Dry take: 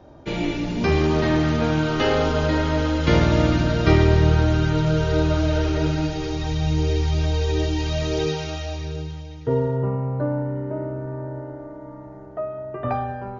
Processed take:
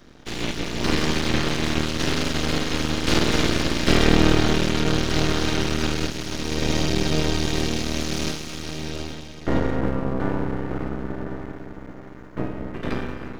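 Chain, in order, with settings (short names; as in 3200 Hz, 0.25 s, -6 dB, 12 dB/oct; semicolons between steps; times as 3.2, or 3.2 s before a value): spectral limiter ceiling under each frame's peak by 29 dB; resonant low shelf 450 Hz +11 dB, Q 1.5; half-wave rectifier; gain -3.5 dB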